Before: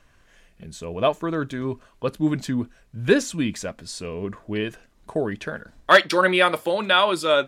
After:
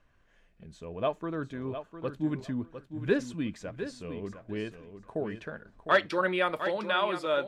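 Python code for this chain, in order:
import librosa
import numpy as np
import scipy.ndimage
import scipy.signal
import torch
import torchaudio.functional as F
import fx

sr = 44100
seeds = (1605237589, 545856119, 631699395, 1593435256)

p1 = fx.lowpass(x, sr, hz=2300.0, slope=6)
p2 = p1 + fx.echo_feedback(p1, sr, ms=705, feedback_pct=19, wet_db=-10.0, dry=0)
y = p2 * 10.0 ** (-8.5 / 20.0)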